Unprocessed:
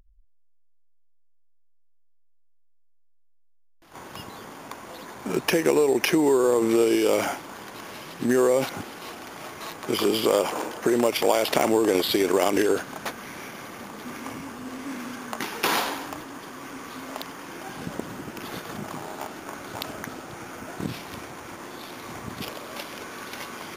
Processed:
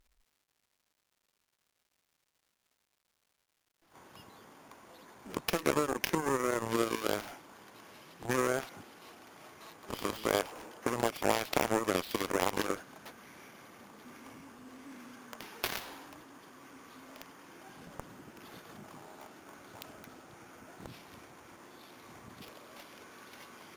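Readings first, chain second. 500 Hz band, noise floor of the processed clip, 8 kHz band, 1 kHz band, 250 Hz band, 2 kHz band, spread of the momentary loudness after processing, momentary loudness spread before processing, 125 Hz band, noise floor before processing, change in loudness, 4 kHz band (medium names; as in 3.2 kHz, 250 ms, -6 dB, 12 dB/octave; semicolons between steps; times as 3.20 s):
-12.5 dB, -81 dBFS, -9.0 dB, -7.5 dB, -12.5 dB, -8.0 dB, 22 LU, 18 LU, -7.0 dB, -56 dBFS, -8.0 dB, -10.5 dB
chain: crackle 350 per s -47 dBFS; Chebyshev shaper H 3 -18 dB, 7 -17 dB, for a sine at -6.5 dBFS; trim -5.5 dB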